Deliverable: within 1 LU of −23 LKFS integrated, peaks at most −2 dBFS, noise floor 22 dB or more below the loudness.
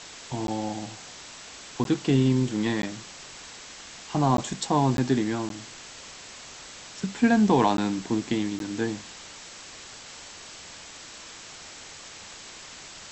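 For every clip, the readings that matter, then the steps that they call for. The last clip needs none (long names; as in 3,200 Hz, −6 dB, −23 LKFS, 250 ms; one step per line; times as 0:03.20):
number of dropouts 8; longest dropout 12 ms; background noise floor −44 dBFS; target noise floor −48 dBFS; integrated loudness −26.0 LKFS; sample peak −8.5 dBFS; target loudness −23.0 LKFS
→ repair the gap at 0:00.47/0:01.84/0:02.82/0:04.37/0:04.97/0:05.49/0:07.77/0:08.59, 12 ms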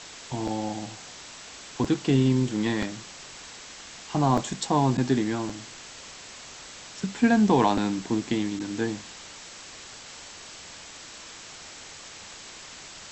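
number of dropouts 0; background noise floor −44 dBFS; target noise floor −48 dBFS
→ noise reduction from a noise print 6 dB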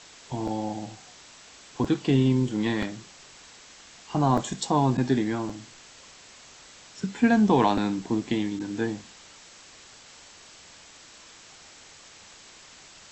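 background noise floor −50 dBFS; integrated loudness −26.0 LKFS; sample peak −8.5 dBFS; target loudness −23.0 LKFS
→ level +3 dB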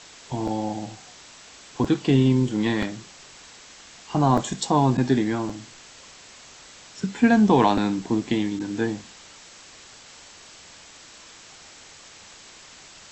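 integrated loudness −23.0 LKFS; sample peak −5.5 dBFS; background noise floor −47 dBFS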